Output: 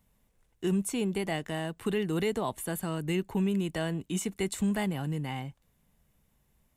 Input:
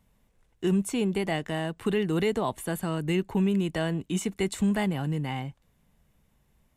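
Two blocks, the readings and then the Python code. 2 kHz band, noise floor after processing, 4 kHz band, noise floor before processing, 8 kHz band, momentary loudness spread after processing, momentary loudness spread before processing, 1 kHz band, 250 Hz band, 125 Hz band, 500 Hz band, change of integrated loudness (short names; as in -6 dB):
-3.0 dB, -71 dBFS, -2.5 dB, -68 dBFS, +0.5 dB, 5 LU, 6 LU, -3.5 dB, -3.5 dB, -3.5 dB, -3.5 dB, -3.5 dB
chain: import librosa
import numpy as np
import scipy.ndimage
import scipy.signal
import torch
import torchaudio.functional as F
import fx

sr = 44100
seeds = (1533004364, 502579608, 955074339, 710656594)

y = fx.high_shelf(x, sr, hz=7800.0, db=7.5)
y = y * librosa.db_to_amplitude(-3.5)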